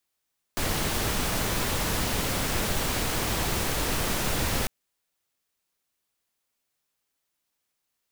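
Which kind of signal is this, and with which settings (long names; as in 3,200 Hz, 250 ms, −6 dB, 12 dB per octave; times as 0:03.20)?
noise pink, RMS −27 dBFS 4.10 s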